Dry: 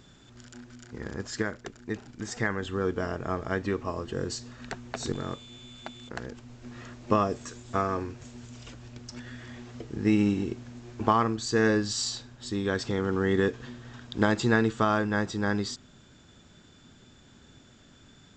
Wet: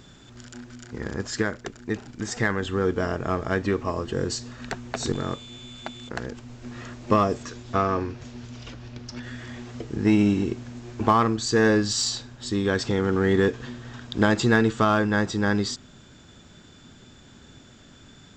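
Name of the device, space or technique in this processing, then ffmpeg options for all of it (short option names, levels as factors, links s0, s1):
parallel distortion: -filter_complex "[0:a]asplit=2[s0][s1];[s1]asoftclip=type=hard:threshold=0.0668,volume=0.562[s2];[s0][s2]amix=inputs=2:normalize=0,asettb=1/sr,asplit=3[s3][s4][s5];[s3]atrim=end=7.434[s6];[s4]atrim=start=7.43:end=9.23,asetpts=PTS-STARTPTS,afade=t=in:d=0.004:c=qsin,afade=t=out:st=1.796:d=0.004:c=qsin,lowpass=f=5900:w=0.5412,lowpass=f=5900:w=1.3066[s7];[s5]atrim=start=9.226[s8];[s6][s7]acrossfade=d=0.004:c1=hsin:c2=qsin[s9];[s9][s8]acrossfade=d=0.004:c1=qsin:c2=hsin,volume=1.19"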